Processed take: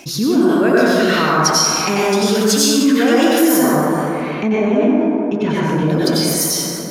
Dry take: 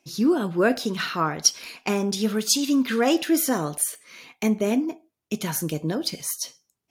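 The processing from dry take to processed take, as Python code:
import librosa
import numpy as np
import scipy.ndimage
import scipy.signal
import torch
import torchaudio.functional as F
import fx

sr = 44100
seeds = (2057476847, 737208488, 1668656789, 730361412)

y = fx.lowpass(x, sr, hz=2300.0, slope=12, at=(3.55, 5.83))
y = fx.rev_plate(y, sr, seeds[0], rt60_s=1.9, hf_ratio=0.45, predelay_ms=80, drr_db=-8.5)
y = fx.env_flatten(y, sr, amount_pct=50)
y = y * librosa.db_to_amplitude(-2.0)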